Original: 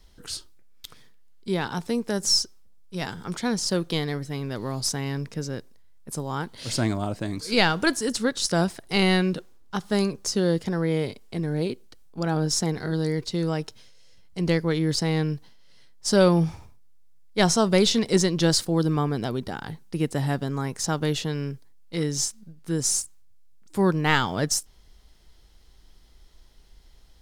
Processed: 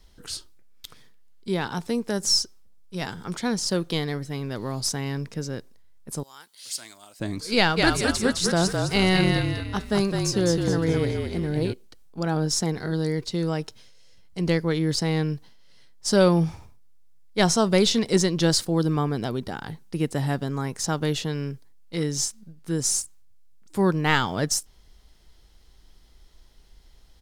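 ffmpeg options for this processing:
ffmpeg -i in.wav -filter_complex "[0:a]asettb=1/sr,asplit=3[link_01][link_02][link_03];[link_01]atrim=end=6.234[link_04];[link_02]atrim=start=6.23:end=7.2,asetpts=PTS-STARTPTS,afade=type=in:duration=0.004:curve=qsin,afade=type=out:start_time=0.966:duration=0.004:curve=qsin,aderivative[link_05];[link_03]atrim=start=7.196[link_06];[link_04][link_05]acrossfade=duration=0.004:curve1=hsin:curve2=qsin[link_07];[link_07][link_06]acrossfade=duration=0.004:curve1=qsin:curve2=hsin,asplit=3[link_08][link_09][link_10];[link_08]afade=type=out:start_time=7.76:duration=0.02[link_11];[link_09]asplit=6[link_12][link_13][link_14][link_15][link_16][link_17];[link_13]adelay=210,afreqshift=-41,volume=-3.5dB[link_18];[link_14]adelay=420,afreqshift=-82,volume=-11dB[link_19];[link_15]adelay=630,afreqshift=-123,volume=-18.6dB[link_20];[link_16]adelay=840,afreqshift=-164,volume=-26.1dB[link_21];[link_17]adelay=1050,afreqshift=-205,volume=-33.6dB[link_22];[link_12][link_18][link_19][link_20][link_21][link_22]amix=inputs=6:normalize=0,afade=type=in:start_time=7.76:duration=0.02,afade=type=out:start_time=11.72:duration=0.02[link_23];[link_10]afade=type=in:start_time=11.72:duration=0.02[link_24];[link_11][link_23][link_24]amix=inputs=3:normalize=0" out.wav

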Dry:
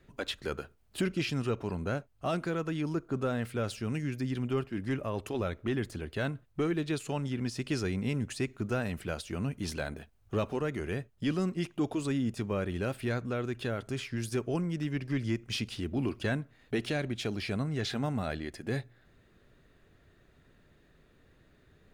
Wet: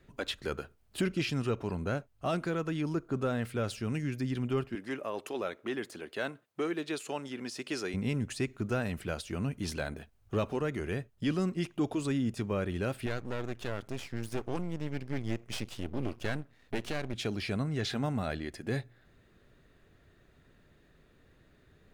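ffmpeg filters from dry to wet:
ffmpeg -i in.wav -filter_complex "[0:a]asettb=1/sr,asplit=3[link_01][link_02][link_03];[link_01]atrim=end=4.754[link_04];[link_02]atrim=start=4.75:end=7.94,asetpts=PTS-STARTPTS,afade=type=in:duration=0.004:curve=qsin,afade=type=out:start_time=3.186:duration=0.004:curve=qsin,highpass=330[link_05];[link_03]atrim=start=7.936[link_06];[link_04][link_05]acrossfade=duration=0.004:curve1=hsin:curve2=qsin[link_07];[link_07][link_06]acrossfade=duration=0.004:curve1=qsin:curve2=hsin,asettb=1/sr,asplit=3[link_08][link_09][link_10];[link_08]atrim=end=13.064[link_11];[link_09]atrim=start=13.06:end=17.14,asetpts=PTS-STARTPTS,afade=type=in:duration=0.004:curve=qsin,afade=type=out:start_time=4.076:duration=0.004:curve=qsin,aeval=exprs='max(val(0),0)':channel_layout=same[link_12];[link_10]atrim=start=17.136[link_13];[link_11][link_12]acrossfade=duration=0.004:curve1=hsin:curve2=qsin[link_14];[link_14][link_13]acrossfade=duration=0.004:curve1=qsin:curve2=hsin" out.wav

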